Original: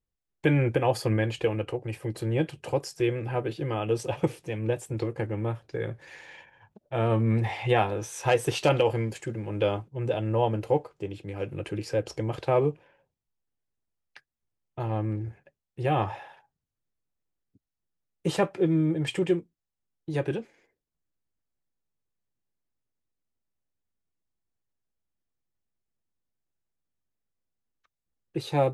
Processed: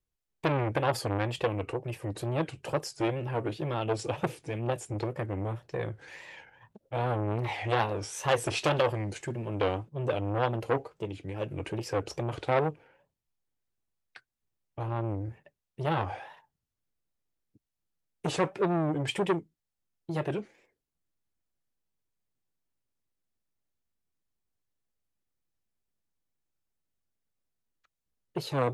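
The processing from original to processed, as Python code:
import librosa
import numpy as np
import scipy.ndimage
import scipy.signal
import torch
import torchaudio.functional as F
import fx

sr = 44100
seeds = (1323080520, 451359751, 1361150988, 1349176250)

y = fx.wow_flutter(x, sr, seeds[0], rate_hz=2.1, depth_cents=140.0)
y = fx.transformer_sat(y, sr, knee_hz=1200.0)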